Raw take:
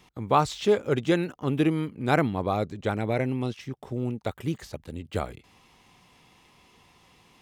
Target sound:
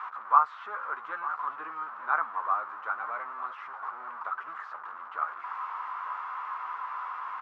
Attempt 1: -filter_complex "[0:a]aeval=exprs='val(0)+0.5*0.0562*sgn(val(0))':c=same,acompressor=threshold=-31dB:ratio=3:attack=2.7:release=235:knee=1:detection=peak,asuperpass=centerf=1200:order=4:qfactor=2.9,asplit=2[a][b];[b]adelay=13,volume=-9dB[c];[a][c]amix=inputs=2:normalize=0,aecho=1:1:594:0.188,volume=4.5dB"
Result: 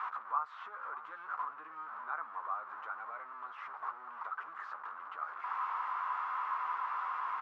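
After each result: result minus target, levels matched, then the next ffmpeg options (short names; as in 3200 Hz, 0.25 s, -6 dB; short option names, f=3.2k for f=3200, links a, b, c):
compressor: peak gain reduction +14 dB; echo 0.305 s early
-filter_complex "[0:a]aeval=exprs='val(0)+0.5*0.0562*sgn(val(0))':c=same,asuperpass=centerf=1200:order=4:qfactor=2.9,asplit=2[a][b];[b]adelay=13,volume=-9dB[c];[a][c]amix=inputs=2:normalize=0,aecho=1:1:594:0.188,volume=4.5dB"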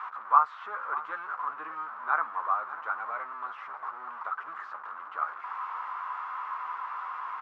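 echo 0.305 s early
-filter_complex "[0:a]aeval=exprs='val(0)+0.5*0.0562*sgn(val(0))':c=same,asuperpass=centerf=1200:order=4:qfactor=2.9,asplit=2[a][b];[b]adelay=13,volume=-9dB[c];[a][c]amix=inputs=2:normalize=0,aecho=1:1:899:0.188,volume=4.5dB"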